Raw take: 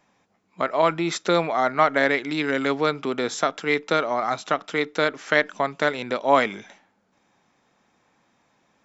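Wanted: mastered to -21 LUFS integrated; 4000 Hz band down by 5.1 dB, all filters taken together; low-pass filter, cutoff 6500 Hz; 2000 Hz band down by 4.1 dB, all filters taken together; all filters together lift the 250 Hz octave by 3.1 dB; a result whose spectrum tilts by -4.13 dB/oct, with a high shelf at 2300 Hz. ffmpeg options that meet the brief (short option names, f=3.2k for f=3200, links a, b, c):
-af "lowpass=6.5k,equalizer=f=250:t=o:g=4,equalizer=f=2k:t=o:g=-6,highshelf=f=2.3k:g=5.5,equalizer=f=4k:t=o:g=-8.5,volume=2.5dB"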